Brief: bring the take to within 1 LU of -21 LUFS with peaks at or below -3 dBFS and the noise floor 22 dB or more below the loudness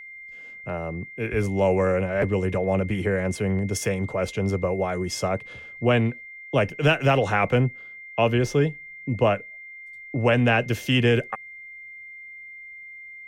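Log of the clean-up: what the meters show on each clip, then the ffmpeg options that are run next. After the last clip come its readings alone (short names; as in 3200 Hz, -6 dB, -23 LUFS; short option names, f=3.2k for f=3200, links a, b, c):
steady tone 2100 Hz; tone level -39 dBFS; loudness -24.0 LUFS; peak -7.0 dBFS; loudness target -21.0 LUFS
-> -af "bandreject=f=2.1k:w=30"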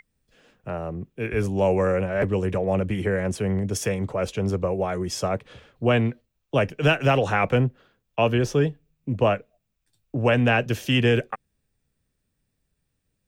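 steady tone none; loudness -24.0 LUFS; peak -6.5 dBFS; loudness target -21.0 LUFS
-> -af "volume=3dB"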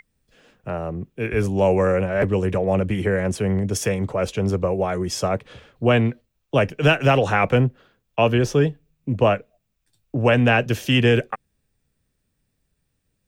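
loudness -21.0 LUFS; peak -3.5 dBFS; noise floor -74 dBFS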